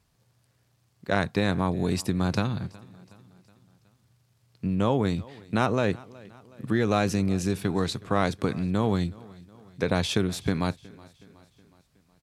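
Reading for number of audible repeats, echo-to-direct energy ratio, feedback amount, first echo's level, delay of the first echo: 3, -21.0 dB, 54%, -22.5 dB, 369 ms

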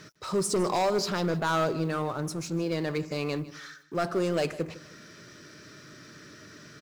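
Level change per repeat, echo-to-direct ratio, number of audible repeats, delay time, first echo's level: -9.5 dB, -17.5 dB, 2, 155 ms, -18.0 dB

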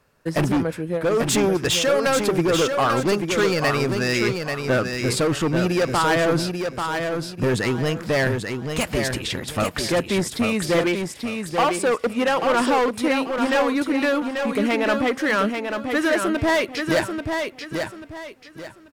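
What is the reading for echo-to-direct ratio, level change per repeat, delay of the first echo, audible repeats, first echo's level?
-5.0 dB, -10.5 dB, 838 ms, 3, -5.5 dB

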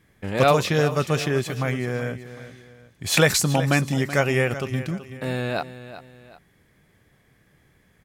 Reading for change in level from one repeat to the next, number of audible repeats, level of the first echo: -8.5 dB, 2, -13.5 dB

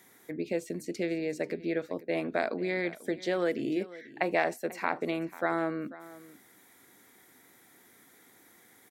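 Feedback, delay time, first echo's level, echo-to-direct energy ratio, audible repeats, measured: no regular repeats, 491 ms, -18.0 dB, -18.0 dB, 1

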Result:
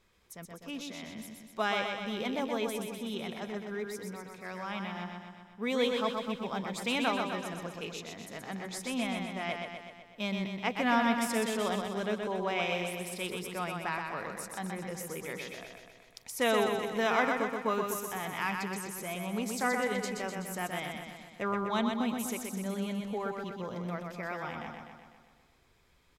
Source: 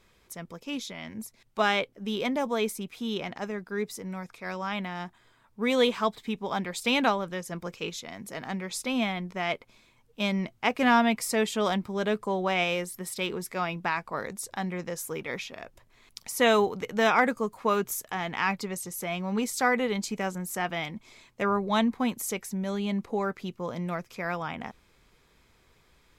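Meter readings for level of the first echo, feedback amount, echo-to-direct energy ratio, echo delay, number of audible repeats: -4.5 dB, 60%, -2.5 dB, 125 ms, 7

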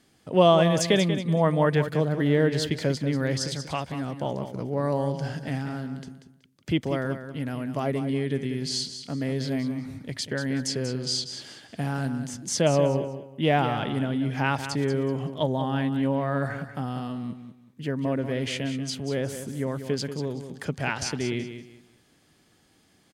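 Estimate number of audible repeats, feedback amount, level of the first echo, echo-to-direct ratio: 3, 26%, -10.0 dB, -9.5 dB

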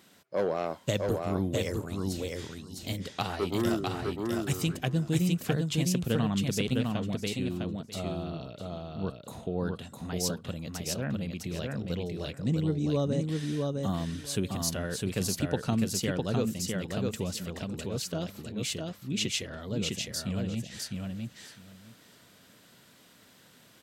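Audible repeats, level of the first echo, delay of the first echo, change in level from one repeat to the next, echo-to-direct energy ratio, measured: 3, -3.0 dB, 656 ms, -16.0 dB, -3.0 dB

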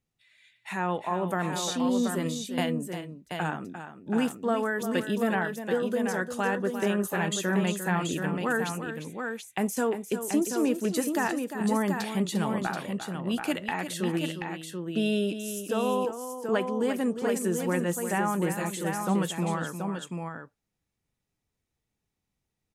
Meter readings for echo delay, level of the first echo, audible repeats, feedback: 350 ms, -10.0 dB, 2, no regular repeats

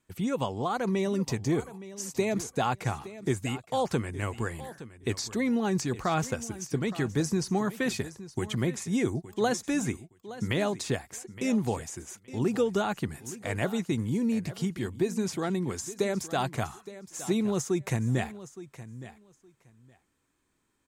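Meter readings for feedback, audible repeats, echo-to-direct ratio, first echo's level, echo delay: 17%, 2, -15.5 dB, -15.5 dB, 867 ms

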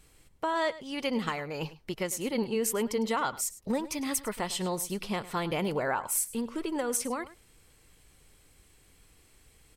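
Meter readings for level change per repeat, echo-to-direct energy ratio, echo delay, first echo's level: no regular repeats, -17.0 dB, 103 ms, -17.0 dB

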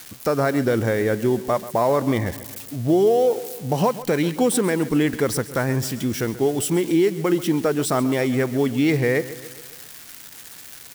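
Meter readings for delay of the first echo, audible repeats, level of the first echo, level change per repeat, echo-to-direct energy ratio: 135 ms, 4, -16.0 dB, -5.0 dB, -14.5 dB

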